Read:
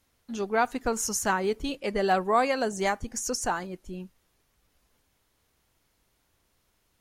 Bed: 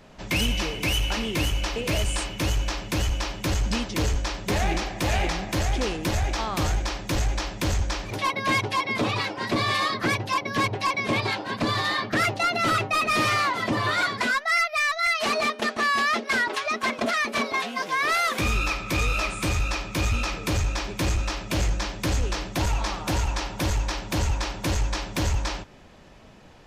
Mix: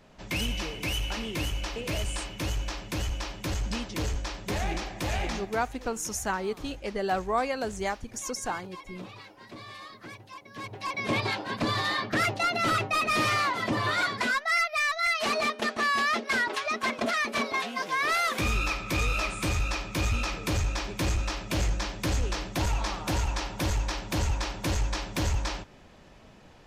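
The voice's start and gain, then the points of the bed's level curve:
5.00 s, −4.0 dB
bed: 0:05.37 −6 dB
0:05.68 −20 dB
0:10.46 −20 dB
0:11.08 −3 dB

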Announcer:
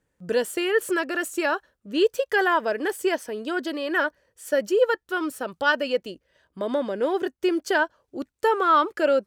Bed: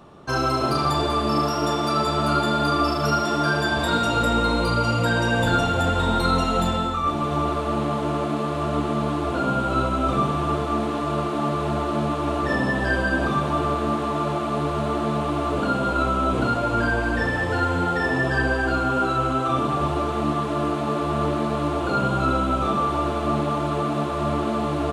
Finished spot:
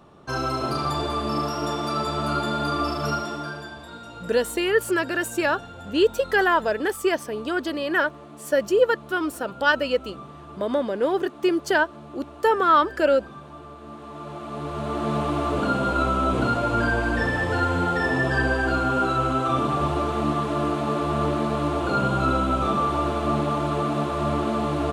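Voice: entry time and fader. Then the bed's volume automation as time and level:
4.00 s, +1.5 dB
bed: 0:03.11 −4 dB
0:03.86 −19 dB
0:13.76 −19 dB
0:15.15 −0.5 dB

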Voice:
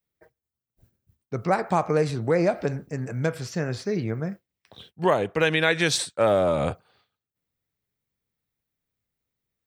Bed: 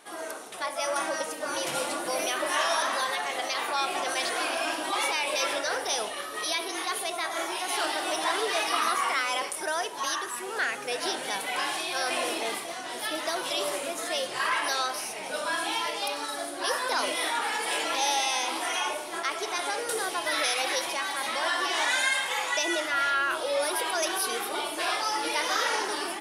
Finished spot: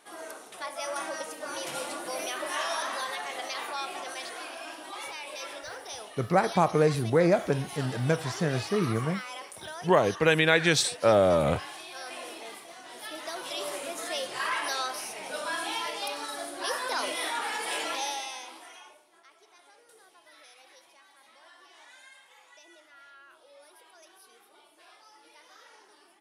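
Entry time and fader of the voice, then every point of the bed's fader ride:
4.85 s, −0.5 dB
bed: 0:03.58 −5 dB
0:04.54 −11.5 dB
0:12.55 −11.5 dB
0:13.98 −3 dB
0:17.89 −3 dB
0:19.14 −27.5 dB

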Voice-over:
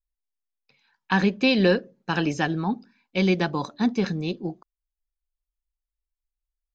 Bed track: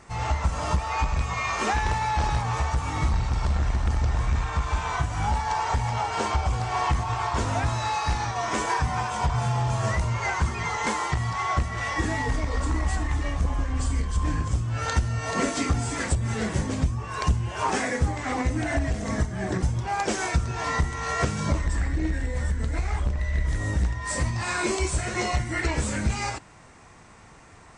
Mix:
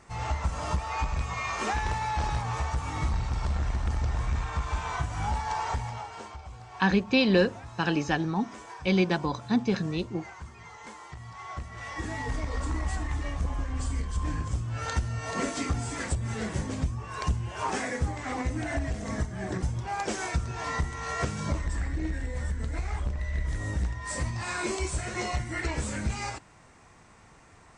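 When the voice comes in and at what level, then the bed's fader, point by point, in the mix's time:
5.70 s, −2.5 dB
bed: 0:05.69 −4.5 dB
0:06.36 −18.5 dB
0:11.03 −18.5 dB
0:12.39 −5 dB

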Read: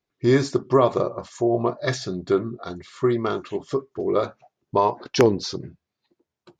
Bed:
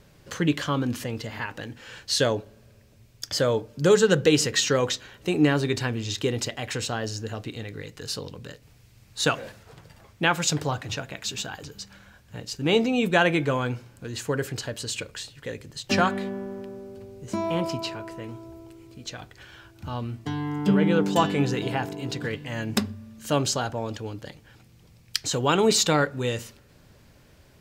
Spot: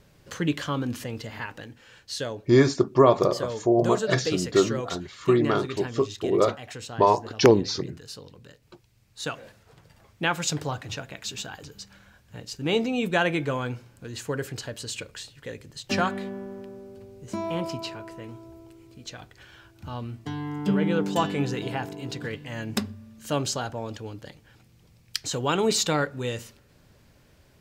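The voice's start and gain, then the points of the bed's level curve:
2.25 s, +0.5 dB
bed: 0:01.48 −2.5 dB
0:01.90 −9 dB
0:09.25 −9 dB
0:10.27 −3 dB

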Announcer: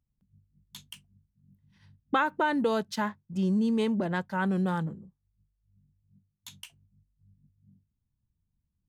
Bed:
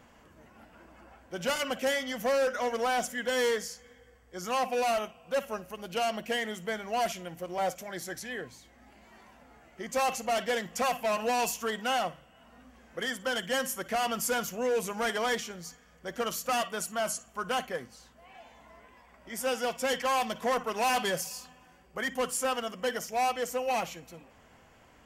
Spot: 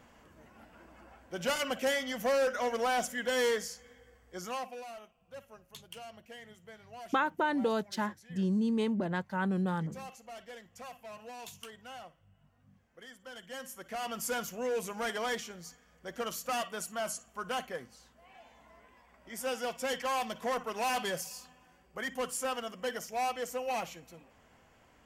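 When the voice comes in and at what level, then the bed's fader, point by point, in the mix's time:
5.00 s, −3.5 dB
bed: 0:04.36 −1.5 dB
0:04.87 −18 dB
0:13.19 −18 dB
0:14.30 −4.5 dB

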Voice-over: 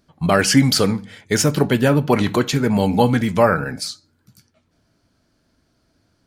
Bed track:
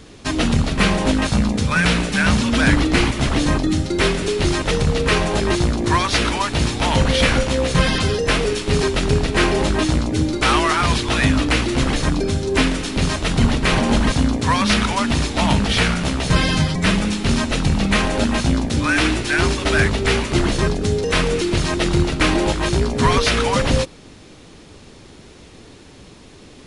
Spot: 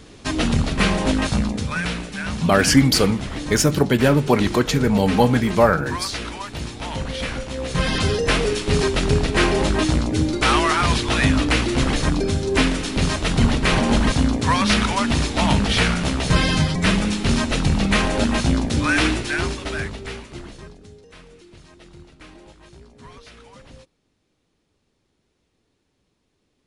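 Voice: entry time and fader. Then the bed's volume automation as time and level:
2.20 s, −0.5 dB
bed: 0:01.28 −2 dB
0:02.11 −11 dB
0:07.47 −11 dB
0:08.03 −1 dB
0:19.05 −1 dB
0:21.09 −27.5 dB

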